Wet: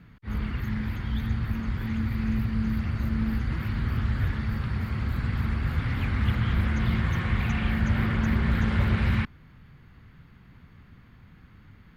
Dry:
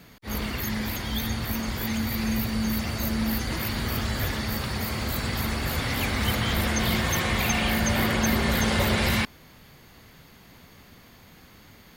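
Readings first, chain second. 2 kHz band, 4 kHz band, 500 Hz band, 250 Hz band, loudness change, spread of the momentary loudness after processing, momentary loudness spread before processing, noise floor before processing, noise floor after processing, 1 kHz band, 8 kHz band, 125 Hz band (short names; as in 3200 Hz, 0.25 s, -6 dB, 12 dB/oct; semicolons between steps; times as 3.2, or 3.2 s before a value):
-6.0 dB, -13.0 dB, -9.5 dB, -1.5 dB, -1.5 dB, 6 LU, 6 LU, -52 dBFS, -53 dBFS, -7.0 dB, under -20 dB, +3.5 dB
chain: EQ curve 130 Hz 0 dB, 630 Hz -17 dB, 1400 Hz -7 dB, 2900 Hz -14 dB, 6200 Hz -27 dB; Doppler distortion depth 0.23 ms; gain +4 dB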